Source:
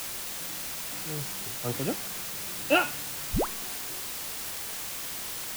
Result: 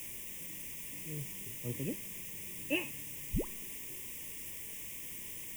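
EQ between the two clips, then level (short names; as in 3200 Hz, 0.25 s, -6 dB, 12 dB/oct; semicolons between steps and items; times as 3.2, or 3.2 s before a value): Butterworth band-stop 1400 Hz, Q 1.3; bell 15000 Hz -2.5 dB 1.6 oct; fixed phaser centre 1800 Hz, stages 4; -4.5 dB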